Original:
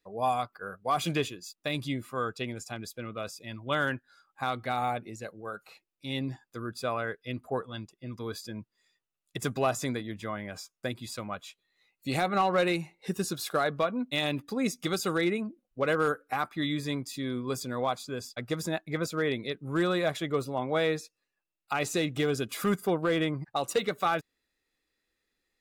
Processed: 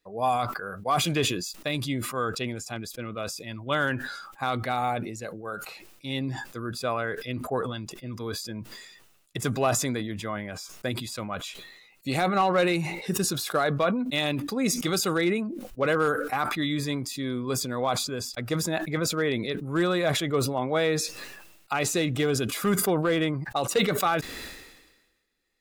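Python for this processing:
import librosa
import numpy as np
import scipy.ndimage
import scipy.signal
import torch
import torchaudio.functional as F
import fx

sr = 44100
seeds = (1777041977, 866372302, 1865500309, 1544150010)

y = fx.sustainer(x, sr, db_per_s=48.0)
y = F.gain(torch.from_numpy(y), 2.5).numpy()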